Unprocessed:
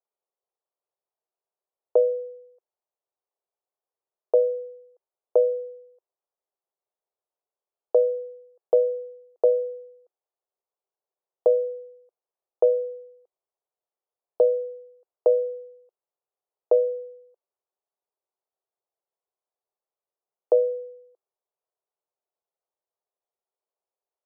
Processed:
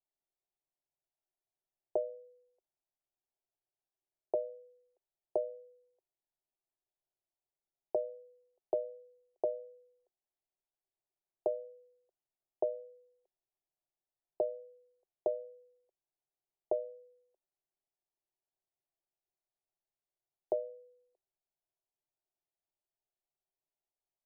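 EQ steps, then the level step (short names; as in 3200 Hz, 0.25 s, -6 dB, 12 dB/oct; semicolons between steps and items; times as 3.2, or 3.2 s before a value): LPF 1000 Hz; tilt -3.5 dB/oct; fixed phaser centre 320 Hz, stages 8; -6.0 dB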